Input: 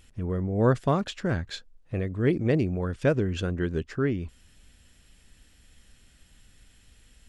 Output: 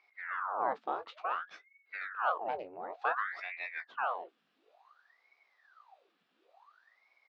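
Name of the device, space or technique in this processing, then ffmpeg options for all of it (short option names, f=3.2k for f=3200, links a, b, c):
voice changer toy: -filter_complex "[0:a]aeval=exprs='val(0)*sin(2*PI*1200*n/s+1200*0.85/0.56*sin(2*PI*0.56*n/s))':c=same,highpass=590,equalizer=f=730:t=q:w=4:g=6,equalizer=f=1.2k:t=q:w=4:g=5,equalizer=f=2.1k:t=q:w=4:g=-5,equalizer=f=3.1k:t=q:w=4:g=-4,lowpass=f=3.9k:w=0.5412,lowpass=f=3.9k:w=1.3066,asplit=2[a][b];[b]adelay=18,volume=-10.5dB[c];[a][c]amix=inputs=2:normalize=0,volume=-8dB"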